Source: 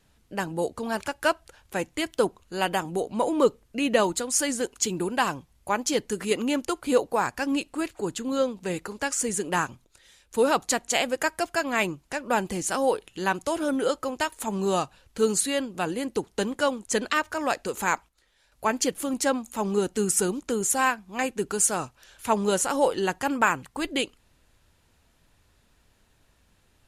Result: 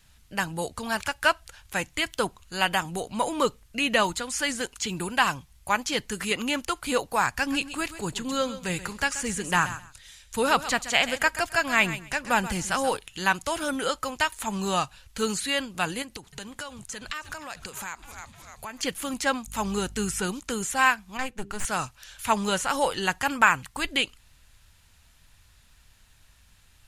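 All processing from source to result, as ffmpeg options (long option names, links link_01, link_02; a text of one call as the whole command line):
ffmpeg -i in.wav -filter_complex "[0:a]asettb=1/sr,asplit=3[link_01][link_02][link_03];[link_01]atrim=end=7.314[link_04];[link_02]atrim=start=7.31:end=12.97,asetpts=PTS-STARTPTS,afade=type=in:duration=0.004:curve=qsin,afade=type=out:start_time=5.656:duration=0.004:curve=qsin,lowshelf=frequency=210:gain=4.5,aecho=1:1:131|262:0.2|0.0359,atrim=end_sample=249606[link_05];[link_03]atrim=start=12.966[link_06];[link_04][link_05]acrossfade=duration=0.004:curve1=hsin:curve2=qsin[link_07];[link_07][link_06]acrossfade=duration=0.004:curve1=qsin:curve2=hsin,asettb=1/sr,asplit=3[link_08][link_09][link_10];[link_08]atrim=end=16.024[link_11];[link_09]atrim=start=16.02:end=18.83,asetpts=PTS-STARTPTS,afade=type=in:duration=0.004:curve=qsin,afade=type=out:start_time=2.806:duration=0.004:curve=qsin,asplit=6[link_12][link_13][link_14][link_15][link_16][link_17];[link_13]adelay=304,afreqshift=-130,volume=-21dB[link_18];[link_14]adelay=608,afreqshift=-260,volume=-25.3dB[link_19];[link_15]adelay=912,afreqshift=-390,volume=-29.6dB[link_20];[link_16]adelay=1216,afreqshift=-520,volume=-33.9dB[link_21];[link_17]adelay=1520,afreqshift=-650,volume=-38.2dB[link_22];[link_12][link_18][link_19][link_20][link_21][link_22]amix=inputs=6:normalize=0,atrim=end_sample=123921,acompressor=threshold=-35dB:ratio=6:attack=3.2:release=140:knee=1:detection=peak[link_23];[link_10]atrim=start=18.826[link_24];[link_11][link_23]acrossfade=duration=0.004:curve1=hsin:curve2=qsin[link_25];[link_25][link_24]acrossfade=duration=0.004:curve1=qsin:curve2=hsin,asettb=1/sr,asplit=3[link_26][link_27][link_28];[link_26]atrim=end=19.464[link_29];[link_27]atrim=start=19.46:end=20.2,asetpts=PTS-STARTPTS,afade=type=in:duration=0.004:curve=qsin,afade=type=out:start_time=0.736:duration=0.004:curve=qsin,agate=range=-20dB:threshold=-51dB:ratio=16:release=100:detection=peak,acompressor=mode=upward:threshold=-47dB:ratio=2.5:attack=3.2:release=140:knee=2.83:detection=peak,aeval=exprs='val(0)+0.00447*(sin(2*PI*50*n/s)+sin(2*PI*2*50*n/s)/2+sin(2*PI*3*50*n/s)/3+sin(2*PI*4*50*n/s)/4+sin(2*PI*5*50*n/s)/5)':channel_layout=same[link_30];[link_28]atrim=start=20.196[link_31];[link_29][link_30]acrossfade=duration=0.004:curve1=hsin:curve2=qsin[link_32];[link_32][link_31]acrossfade=duration=0.004:curve1=qsin:curve2=hsin,asettb=1/sr,asplit=3[link_33][link_34][link_35];[link_33]atrim=end=21.174[link_36];[link_34]atrim=start=21.17:end=21.65,asetpts=PTS-STARTPTS,afade=type=in:duration=0.004:curve=qsin,afade=type=out:start_time=0.476:duration=0.004:curve=qsin,aeval=exprs='(tanh(11.2*val(0)+0.75)-tanh(0.75))/11.2':channel_layout=same,highshelf=frequency=2800:gain=-10,bandreject=frequency=99.84:width_type=h:width=4,bandreject=frequency=199.68:width_type=h:width=4,bandreject=frequency=299.52:width_type=h:width=4,bandreject=frequency=399.36:width_type=h:width=4,bandreject=frequency=499.2:width_type=h:width=4[link_37];[link_35]atrim=start=21.646[link_38];[link_36][link_37]acrossfade=duration=0.004:curve1=hsin:curve2=qsin[link_39];[link_39][link_38]acrossfade=duration=0.004:curve1=qsin:curve2=hsin,acrossover=split=3500[link_40][link_41];[link_41]acompressor=threshold=-40dB:ratio=4:attack=1:release=60[link_42];[link_40][link_42]amix=inputs=2:normalize=0,equalizer=frequency=380:width=0.55:gain=-15,volume=8dB" out.wav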